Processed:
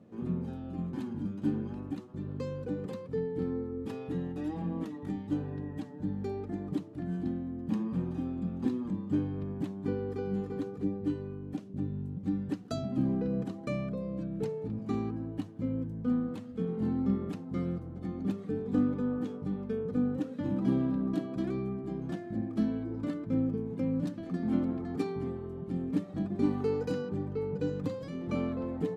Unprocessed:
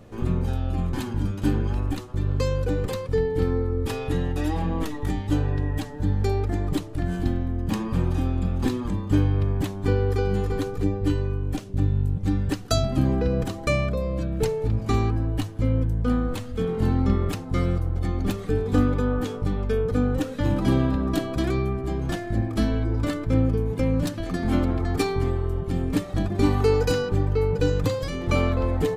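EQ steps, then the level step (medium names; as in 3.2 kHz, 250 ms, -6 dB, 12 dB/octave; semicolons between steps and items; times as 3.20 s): band-pass filter 200 Hz, Q 2.1; tilt EQ +4 dB/octave; +6.5 dB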